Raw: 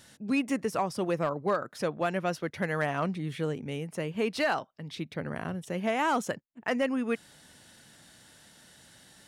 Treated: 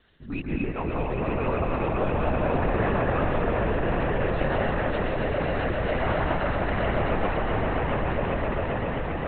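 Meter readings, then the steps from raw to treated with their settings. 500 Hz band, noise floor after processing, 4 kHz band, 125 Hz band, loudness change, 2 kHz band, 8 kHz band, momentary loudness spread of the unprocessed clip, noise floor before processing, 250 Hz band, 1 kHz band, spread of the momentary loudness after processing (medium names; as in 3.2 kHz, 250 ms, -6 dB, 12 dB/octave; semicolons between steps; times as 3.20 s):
+6.0 dB, -31 dBFS, +1.0 dB, +10.0 dB, +4.5 dB, +4.5 dB, under -35 dB, 8 LU, -57 dBFS, +3.5 dB, +5.5 dB, 4 LU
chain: echo with a slow build-up 133 ms, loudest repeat 8, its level -6.5 dB; plate-style reverb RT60 2.2 s, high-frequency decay 0.35×, pre-delay 115 ms, DRR -2.5 dB; LPC vocoder at 8 kHz whisper; trim -4.5 dB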